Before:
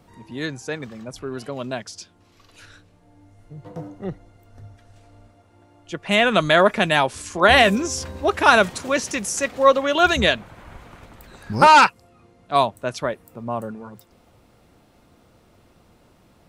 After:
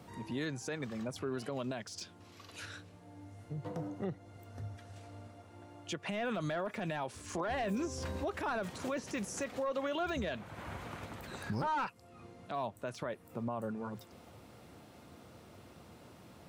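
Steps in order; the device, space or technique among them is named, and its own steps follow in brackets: podcast mastering chain (high-pass 70 Hz 24 dB/octave; de-esser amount 90%; compression 2:1, threshold -39 dBFS, peak gain reduction 14.5 dB; peak limiter -28.5 dBFS, peak gain reduction 8.5 dB; trim +1 dB; MP3 128 kbps 48 kHz)

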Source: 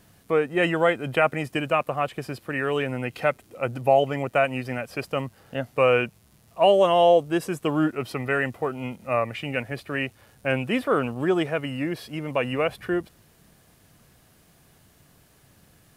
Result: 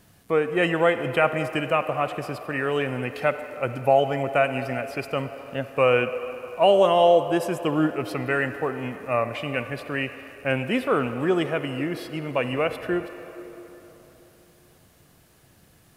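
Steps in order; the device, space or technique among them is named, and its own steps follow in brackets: filtered reverb send (on a send: high-pass 320 Hz 12 dB/octave + low-pass 4.2 kHz + reverberation RT60 3.7 s, pre-delay 43 ms, DRR 9.5 dB)

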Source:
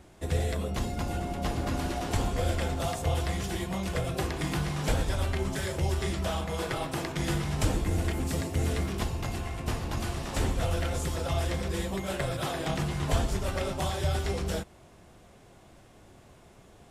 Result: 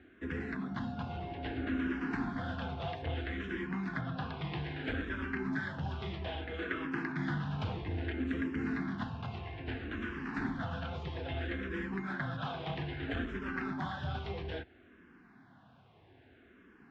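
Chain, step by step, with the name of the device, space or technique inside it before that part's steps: 4.01–4.57 s: steep low-pass 5.6 kHz 48 dB/octave; barber-pole phaser into a guitar amplifier (barber-pole phaser -0.61 Hz; saturation -22 dBFS, distortion -21 dB; cabinet simulation 90–3500 Hz, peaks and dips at 260 Hz +9 dB, 570 Hz -9 dB, 1.6 kHz +10 dB); trim -3 dB

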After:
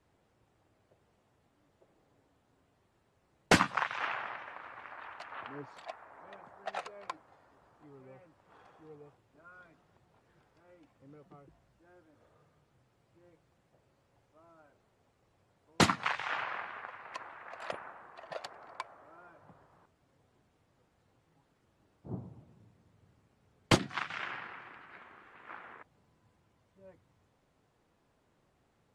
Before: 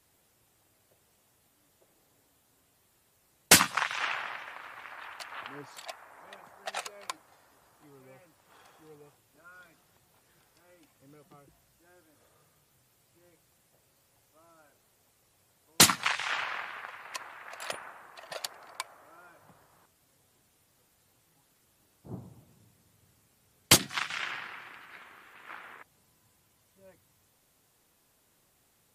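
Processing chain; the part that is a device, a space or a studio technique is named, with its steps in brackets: through cloth (low-pass 7.7 kHz 12 dB/octave; treble shelf 2.7 kHz -17 dB); trim +1.5 dB

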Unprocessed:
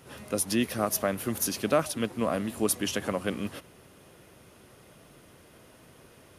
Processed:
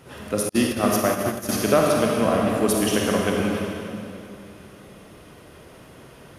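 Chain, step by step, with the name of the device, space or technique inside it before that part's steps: swimming-pool hall (reverberation RT60 2.7 s, pre-delay 34 ms, DRR -2 dB; treble shelf 4.6 kHz -6 dB); 0.49–1.49 s: gate -26 dBFS, range -43 dB; trim +5 dB

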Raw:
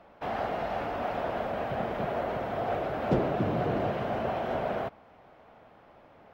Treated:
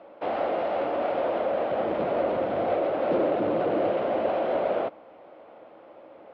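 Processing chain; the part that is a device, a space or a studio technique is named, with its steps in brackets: 1.85–2.74 s: tone controls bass +8 dB, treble +2 dB; guitar amplifier (valve stage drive 28 dB, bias 0.4; tone controls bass -6 dB, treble -4 dB; cabinet simulation 100–4600 Hz, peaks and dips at 130 Hz -7 dB, 320 Hz +9 dB, 540 Hz +10 dB, 1.7 kHz -4 dB); trim +4.5 dB

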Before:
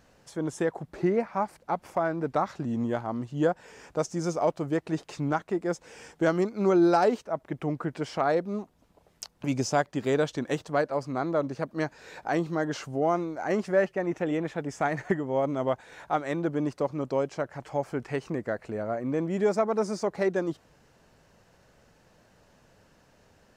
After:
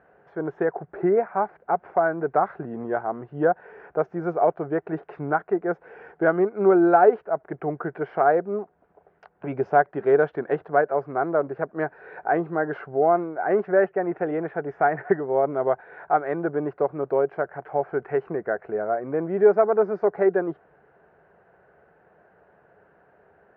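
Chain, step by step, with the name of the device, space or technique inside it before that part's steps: bass cabinet (cabinet simulation 87–2000 Hz, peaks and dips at 110 Hz -9 dB, 250 Hz -8 dB, 410 Hz +10 dB, 720 Hz +9 dB, 1.5 kHz +8 dB)

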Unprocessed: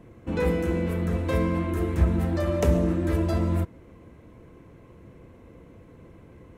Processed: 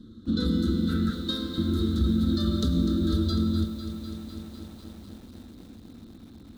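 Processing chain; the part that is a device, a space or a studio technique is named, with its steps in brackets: 1.10–1.58 s: Bessel high-pass 490 Hz, order 2; 0.89–1.14 s: time-frequency box 1.3–2.9 kHz +11 dB; FFT filter 100 Hz 0 dB, 150 Hz -6 dB, 230 Hz +11 dB, 630 Hz -20 dB, 920 Hz -27 dB, 1.3 kHz +3 dB, 2.4 kHz -22 dB, 3.7 kHz +12 dB, 5.3 kHz -19 dB; over-bright horn tweeter (resonant high shelf 3.6 kHz +12.5 dB, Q 3; peak limiter -17 dBFS, peak gain reduction 8 dB); bit-crushed delay 250 ms, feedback 80%, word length 8-bit, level -11 dB

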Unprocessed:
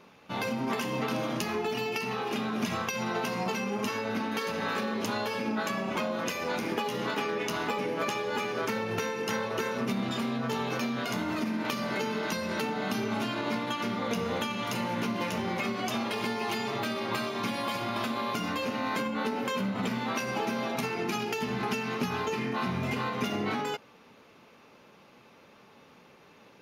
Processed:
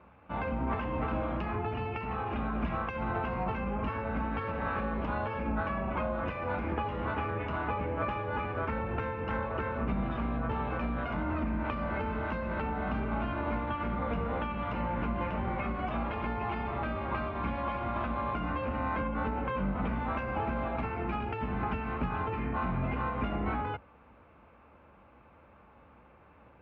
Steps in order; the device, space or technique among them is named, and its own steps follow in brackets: sub-octave bass pedal (octave divider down 2 oct, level +2 dB; cabinet simulation 64–2100 Hz, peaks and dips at 160 Hz -4 dB, 240 Hz -4 dB, 410 Hz -8 dB, 1.9 kHz -6 dB)

